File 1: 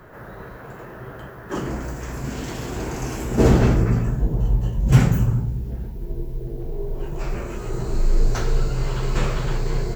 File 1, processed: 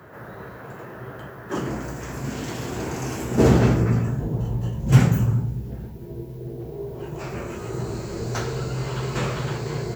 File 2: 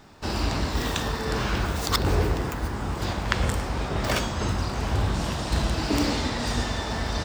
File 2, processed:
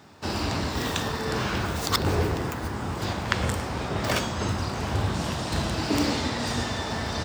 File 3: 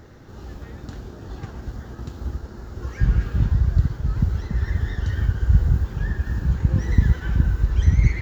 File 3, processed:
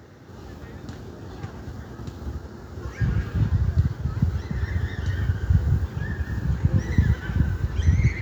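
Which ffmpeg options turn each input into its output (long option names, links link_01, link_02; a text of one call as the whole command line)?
ffmpeg -i in.wav -af "highpass=frequency=73:width=0.5412,highpass=frequency=73:width=1.3066" out.wav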